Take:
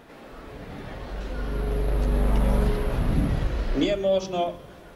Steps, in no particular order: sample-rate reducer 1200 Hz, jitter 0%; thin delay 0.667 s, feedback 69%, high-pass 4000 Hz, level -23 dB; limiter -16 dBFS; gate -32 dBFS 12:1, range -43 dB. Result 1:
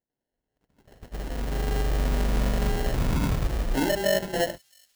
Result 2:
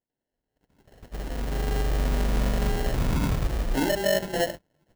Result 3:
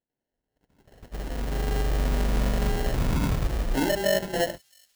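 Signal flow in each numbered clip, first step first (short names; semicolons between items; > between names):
limiter > sample-rate reducer > gate > thin delay; limiter > gate > thin delay > sample-rate reducer; limiter > gate > sample-rate reducer > thin delay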